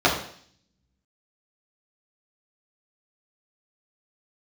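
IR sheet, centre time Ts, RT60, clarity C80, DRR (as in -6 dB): 29 ms, 0.55 s, 10.0 dB, -6.0 dB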